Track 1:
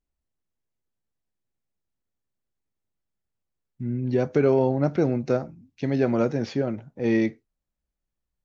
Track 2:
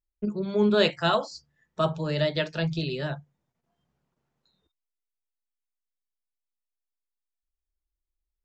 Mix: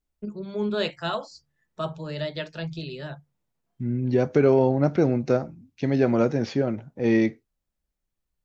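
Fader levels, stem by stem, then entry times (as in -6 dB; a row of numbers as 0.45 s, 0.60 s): +1.5 dB, -5.0 dB; 0.00 s, 0.00 s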